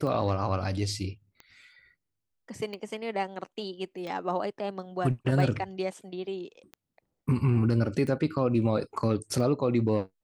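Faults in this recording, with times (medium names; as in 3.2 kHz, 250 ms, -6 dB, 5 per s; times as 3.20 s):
tick 45 rpm -27 dBFS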